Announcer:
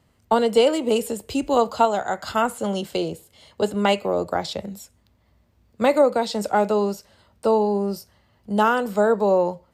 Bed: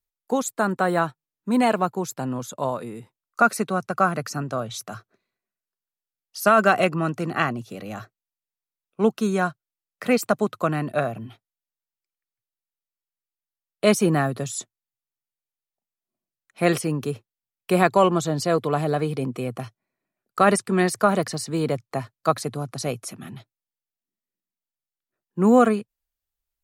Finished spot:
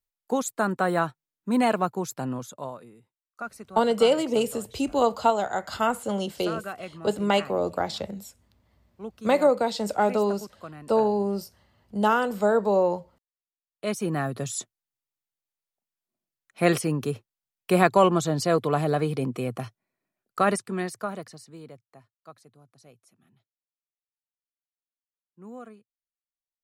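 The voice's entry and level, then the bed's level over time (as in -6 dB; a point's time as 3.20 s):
3.45 s, -3.0 dB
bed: 2.32 s -2.5 dB
3.03 s -18 dB
13.46 s -18 dB
14.51 s -1 dB
20.16 s -1 dB
22.11 s -26.5 dB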